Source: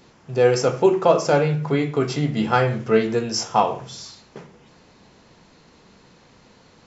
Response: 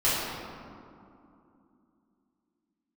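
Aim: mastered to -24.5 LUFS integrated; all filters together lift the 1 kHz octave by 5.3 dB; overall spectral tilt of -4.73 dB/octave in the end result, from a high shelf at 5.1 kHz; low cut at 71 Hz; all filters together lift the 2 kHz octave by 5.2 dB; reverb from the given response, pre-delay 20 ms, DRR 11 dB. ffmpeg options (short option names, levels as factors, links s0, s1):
-filter_complex "[0:a]highpass=71,equalizer=f=1000:t=o:g=6,equalizer=f=2000:t=o:g=5,highshelf=f=5100:g=-3,asplit=2[s0][s1];[1:a]atrim=start_sample=2205,adelay=20[s2];[s1][s2]afir=irnorm=-1:irlink=0,volume=0.0531[s3];[s0][s3]amix=inputs=2:normalize=0,volume=0.473"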